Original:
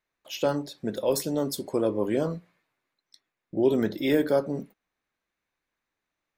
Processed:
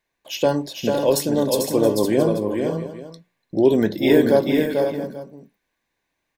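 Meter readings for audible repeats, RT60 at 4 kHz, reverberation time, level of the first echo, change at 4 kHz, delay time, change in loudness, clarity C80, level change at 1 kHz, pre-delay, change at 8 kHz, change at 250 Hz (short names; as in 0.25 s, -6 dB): 4, none, none, -5.0 dB, +8.0 dB, 0.444 s, +7.5 dB, none, +8.0 dB, none, +8.0 dB, +8.5 dB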